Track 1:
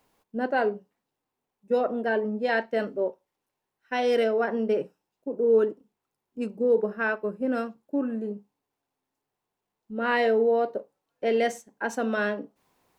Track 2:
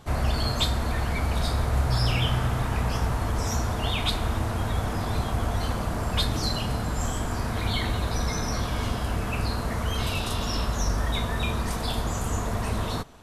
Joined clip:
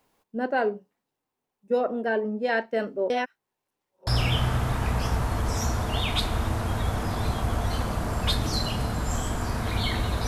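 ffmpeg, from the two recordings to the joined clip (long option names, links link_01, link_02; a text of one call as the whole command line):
ffmpeg -i cue0.wav -i cue1.wav -filter_complex "[0:a]apad=whole_dur=10.27,atrim=end=10.27,asplit=2[link_01][link_02];[link_01]atrim=end=3.102[link_03];[link_02]atrim=start=3.098:end=4.072,asetpts=PTS-STARTPTS,areverse[link_04];[1:a]atrim=start=1.968:end=8.17[link_05];[link_03][link_04]acrossfade=duration=0.004:curve1=hsin:curve2=hsin[link_06];[link_06][link_05]acrossfade=duration=0.004:curve1=hsin:curve2=hsin" out.wav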